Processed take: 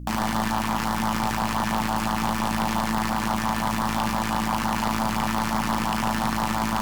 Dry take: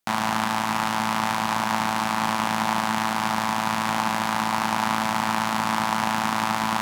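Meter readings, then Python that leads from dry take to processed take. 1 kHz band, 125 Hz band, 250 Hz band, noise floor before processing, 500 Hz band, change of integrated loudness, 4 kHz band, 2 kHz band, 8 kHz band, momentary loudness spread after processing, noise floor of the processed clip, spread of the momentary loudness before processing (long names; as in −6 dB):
−2.0 dB, +5.0 dB, +2.5 dB, −26 dBFS, 0.0 dB, −1.0 dB, −2.5 dB, −3.5 dB, −1.0 dB, 0 LU, −27 dBFS, 1 LU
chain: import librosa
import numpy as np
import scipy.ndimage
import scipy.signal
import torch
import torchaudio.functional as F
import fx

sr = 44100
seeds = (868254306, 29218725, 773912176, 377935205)

y = fx.filter_lfo_notch(x, sr, shape='sine', hz=5.8, low_hz=730.0, high_hz=3000.0, q=1.0)
y = fx.add_hum(y, sr, base_hz=60, snr_db=14)
y = fx.fold_sine(y, sr, drive_db=11, ceiling_db=-7.0)
y = fx.peak_eq(y, sr, hz=3700.0, db=-4.0, octaves=0.23)
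y = fx.comb_fb(y, sr, f0_hz=590.0, decay_s=0.5, harmonics='all', damping=0.0, mix_pct=70)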